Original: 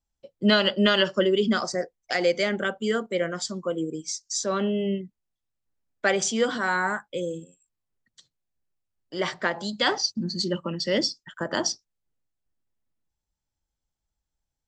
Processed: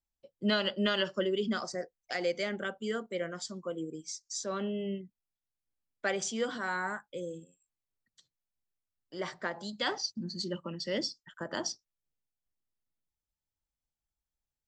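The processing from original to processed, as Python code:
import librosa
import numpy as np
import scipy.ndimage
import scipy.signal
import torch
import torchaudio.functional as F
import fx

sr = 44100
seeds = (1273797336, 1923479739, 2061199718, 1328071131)

y = fx.dynamic_eq(x, sr, hz=2900.0, q=1.7, threshold_db=-47.0, ratio=4.0, max_db=-5, at=(7.09, 9.63))
y = F.gain(torch.from_numpy(y), -9.0).numpy()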